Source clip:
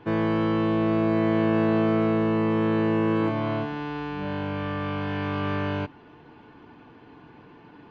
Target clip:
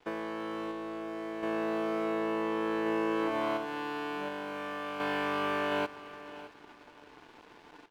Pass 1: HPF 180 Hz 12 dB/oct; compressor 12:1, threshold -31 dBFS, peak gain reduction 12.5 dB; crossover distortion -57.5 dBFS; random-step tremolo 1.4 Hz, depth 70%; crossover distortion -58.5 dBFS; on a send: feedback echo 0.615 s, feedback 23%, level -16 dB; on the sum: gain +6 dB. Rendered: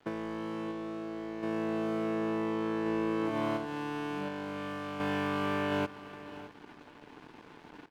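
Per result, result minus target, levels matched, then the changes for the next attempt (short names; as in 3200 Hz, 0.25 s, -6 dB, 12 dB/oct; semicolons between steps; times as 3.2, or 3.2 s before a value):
second crossover distortion: distortion +7 dB; 250 Hz band +2.5 dB
change: second crossover distortion -65.5 dBFS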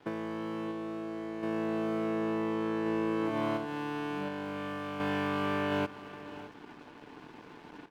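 250 Hz band +2.5 dB
change: HPF 390 Hz 12 dB/oct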